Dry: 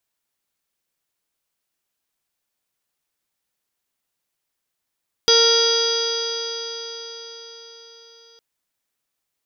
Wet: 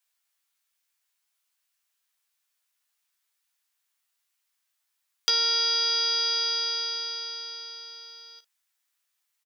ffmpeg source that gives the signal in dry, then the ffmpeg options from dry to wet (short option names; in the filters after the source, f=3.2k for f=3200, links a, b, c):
-f lavfi -i "aevalsrc='0.158*pow(10,-3*t/4.88)*sin(2*PI*460.28*t)+0.0355*pow(10,-3*t/4.88)*sin(2*PI*922.21*t)+0.0631*pow(10,-3*t/4.88)*sin(2*PI*1387.43*t)+0.0266*pow(10,-3*t/4.88)*sin(2*PI*1857.58*t)+0.0168*pow(10,-3*t/4.88)*sin(2*PI*2334.25*t)+0.02*pow(10,-3*t/4.88)*sin(2*PI*2818.99*t)+0.141*pow(10,-3*t/4.88)*sin(2*PI*3313.32*t)+0.0596*pow(10,-3*t/4.88)*sin(2*PI*3818.7*t)+0.0251*pow(10,-3*t/4.88)*sin(2*PI*4336.54*t)+0.178*pow(10,-3*t/4.88)*sin(2*PI*4868.18*t)+0.0316*pow(10,-3*t/4.88)*sin(2*PI*5414.91*t)+0.0841*pow(10,-3*t/4.88)*sin(2*PI*5977.93*t)':d=3.11:s=44100"
-filter_complex "[0:a]highpass=1.1k,asplit=2[a][b];[b]aecho=0:1:15|54:0.668|0.251[c];[a][c]amix=inputs=2:normalize=0,acompressor=threshold=-22dB:ratio=6"